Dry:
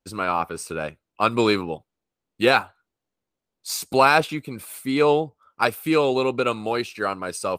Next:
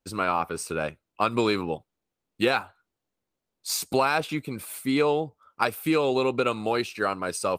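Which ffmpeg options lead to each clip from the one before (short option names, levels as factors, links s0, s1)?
-af "acompressor=threshold=0.112:ratio=6"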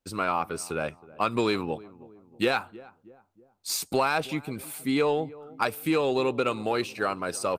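-filter_complex "[0:a]asplit=2[s0][s1];[s1]asoftclip=type=tanh:threshold=0.168,volume=0.668[s2];[s0][s2]amix=inputs=2:normalize=0,asplit=2[s3][s4];[s4]adelay=318,lowpass=f=800:p=1,volume=0.119,asplit=2[s5][s6];[s6]adelay=318,lowpass=f=800:p=1,volume=0.53,asplit=2[s7][s8];[s8]adelay=318,lowpass=f=800:p=1,volume=0.53,asplit=2[s9][s10];[s10]adelay=318,lowpass=f=800:p=1,volume=0.53[s11];[s3][s5][s7][s9][s11]amix=inputs=5:normalize=0,volume=0.531"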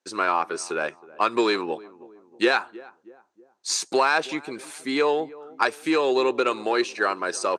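-af "highpass=330,equalizer=f=360:t=q:w=4:g=7,equalizer=f=1000:t=q:w=4:g=4,equalizer=f=1700:t=q:w=4:g=8,equalizer=f=4100:t=q:w=4:g=3,equalizer=f=6200:t=q:w=4:g=7,lowpass=f=8900:w=0.5412,lowpass=f=8900:w=1.3066,volume=1.26"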